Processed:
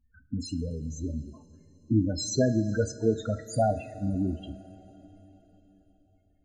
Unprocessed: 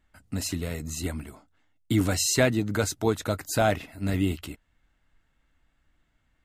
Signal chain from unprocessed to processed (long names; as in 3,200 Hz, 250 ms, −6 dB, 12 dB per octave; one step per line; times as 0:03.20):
one scale factor per block 5 bits
spectral peaks only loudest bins 8
coupled-rooms reverb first 0.3 s, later 4.3 s, from −18 dB, DRR 8 dB